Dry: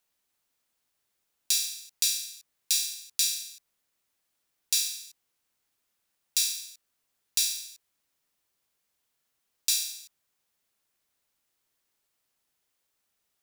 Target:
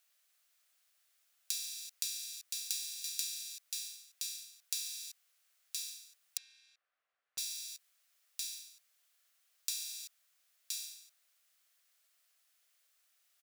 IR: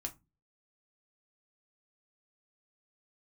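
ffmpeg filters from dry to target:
-filter_complex "[0:a]highpass=frequency=660:width=0.5412,highpass=frequency=660:width=1.3066,equalizer=frequency=910:width=4.2:gain=-14,aecho=1:1:1020:0.141,acompressor=threshold=-39dB:ratio=10,asettb=1/sr,asplit=3[link_01][link_02][link_03];[link_01]atrim=end=6.374[link_04];[link_02]atrim=start=6.37:end=7.38,asetpts=PTS-STARTPTS,afade=type=in:duration=0.004:curve=qsin,afade=type=out:start_time=1.006:duration=0.004:curve=qsin,lowpass=1500[link_05];[link_03]atrim=start=7.376[link_06];[link_04][link_05]acrossfade=duration=0.004:curve1=hsin:curve2=qsin[link_07];[link_07][link_06]acrossfade=duration=0.004:curve1=qsin:curve2=hsin,volume=4.5dB"

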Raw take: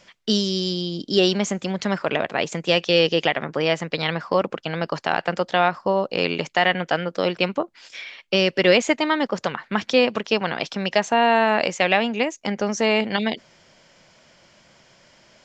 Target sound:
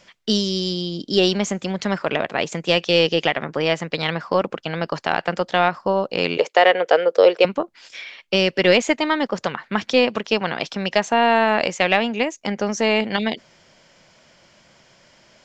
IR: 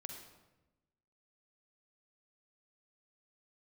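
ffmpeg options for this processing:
-filter_complex "[0:a]aeval=exprs='0.75*(cos(1*acos(clip(val(0)/0.75,-1,1)))-cos(1*PI/2))+0.0422*(cos(3*acos(clip(val(0)/0.75,-1,1)))-cos(3*PI/2))+0.0168*(cos(4*acos(clip(val(0)/0.75,-1,1)))-cos(4*PI/2))+0.0106*(cos(5*acos(clip(val(0)/0.75,-1,1)))-cos(5*PI/2))':channel_layout=same,asettb=1/sr,asplit=3[link_01][link_02][link_03];[link_01]atrim=end=6.374[link_04];[link_02]atrim=start=6.37:end=7.45,asetpts=PTS-STARTPTS,afade=type=in:duration=0.004:curve=qsin,afade=type=out:start_time=1.076:duration=0.004:curve=qsin,highpass=frequency=470:width_type=q:width=4.3[link_05];[link_03]atrim=start=7.446[link_06];[link_04][link_05]acrossfade=duration=0.004:curve1=hsin:curve2=qsin[link_07];[link_07][link_06]acrossfade=duration=0.004:curve1=qsin:curve2=hsin,volume=1.5dB"

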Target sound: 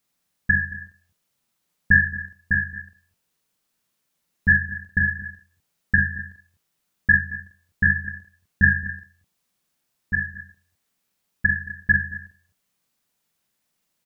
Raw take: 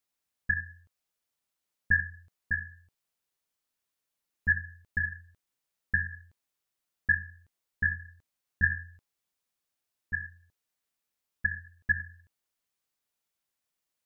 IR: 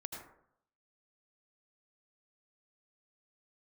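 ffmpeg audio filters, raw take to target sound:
-af "equalizer=frequency=180:width_type=o:width=0.88:gain=9,aecho=1:1:44|74|223|253:0.631|0.2|0.133|0.15,volume=8dB"

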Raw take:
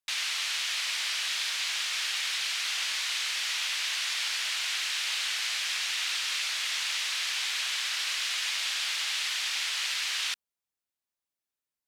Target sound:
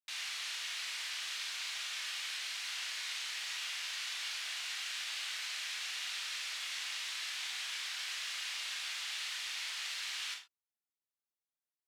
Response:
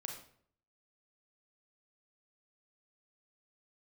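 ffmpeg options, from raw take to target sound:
-filter_complex "[0:a]lowshelf=frequency=160:gain=-6[link_01];[1:a]atrim=start_sample=2205,afade=type=out:start_time=0.24:duration=0.01,atrim=end_sample=11025,asetrate=61740,aresample=44100[link_02];[link_01][link_02]afir=irnorm=-1:irlink=0,volume=-4dB"

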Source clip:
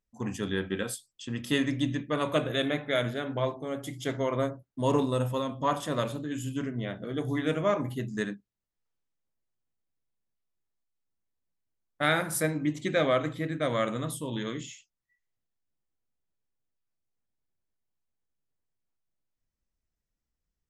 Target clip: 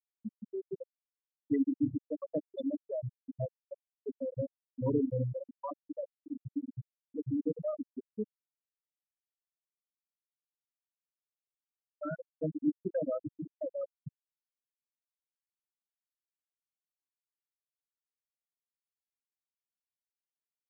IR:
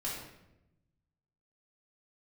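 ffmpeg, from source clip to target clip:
-filter_complex "[0:a]afftfilt=real='re*gte(hypot(re,im),0.282)':imag='im*gte(hypot(re,im),0.282)':win_size=1024:overlap=0.75,acrossover=split=480[link_01][link_02];[link_02]acompressor=threshold=-42dB:ratio=6[link_03];[link_01][link_03]amix=inputs=2:normalize=0"

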